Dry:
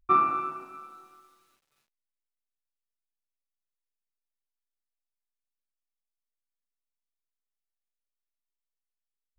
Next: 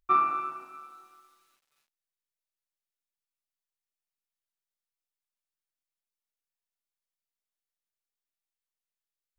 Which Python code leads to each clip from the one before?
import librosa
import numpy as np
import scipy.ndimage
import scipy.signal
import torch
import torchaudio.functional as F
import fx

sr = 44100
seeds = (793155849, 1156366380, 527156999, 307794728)

y = fx.low_shelf(x, sr, hz=470.0, db=-10.0)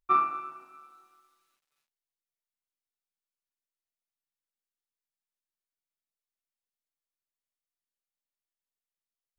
y = fx.upward_expand(x, sr, threshold_db=-32.0, expansion=1.5)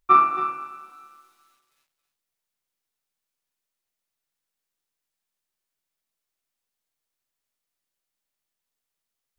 y = x + 10.0 ** (-9.5 / 20.0) * np.pad(x, (int(272 * sr / 1000.0), 0))[:len(x)]
y = y * librosa.db_to_amplitude(8.5)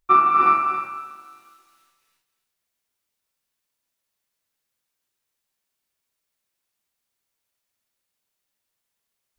y = fx.rev_gated(x, sr, seeds[0], gate_ms=390, shape='rising', drr_db=-3.0)